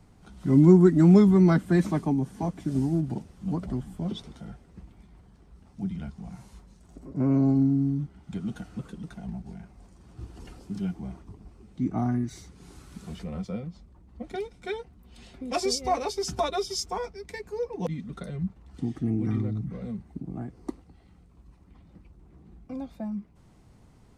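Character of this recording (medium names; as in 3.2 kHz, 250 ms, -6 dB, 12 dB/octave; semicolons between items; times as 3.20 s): noise floor -56 dBFS; spectral tilt -6.5 dB/octave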